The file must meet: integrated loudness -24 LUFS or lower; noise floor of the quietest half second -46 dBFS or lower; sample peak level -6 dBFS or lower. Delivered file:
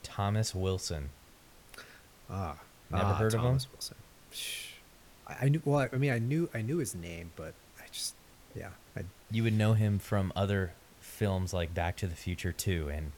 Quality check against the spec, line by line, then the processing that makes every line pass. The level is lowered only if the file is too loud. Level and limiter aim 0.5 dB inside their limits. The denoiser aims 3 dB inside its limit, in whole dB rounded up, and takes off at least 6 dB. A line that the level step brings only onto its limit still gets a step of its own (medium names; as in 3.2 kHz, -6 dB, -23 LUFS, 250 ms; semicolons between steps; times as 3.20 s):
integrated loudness -33.0 LUFS: pass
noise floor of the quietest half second -58 dBFS: pass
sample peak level -16.5 dBFS: pass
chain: none needed